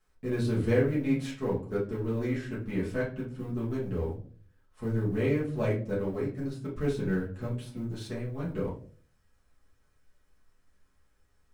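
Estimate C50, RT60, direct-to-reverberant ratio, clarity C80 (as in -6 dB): 7.0 dB, not exponential, -8.5 dB, 13.5 dB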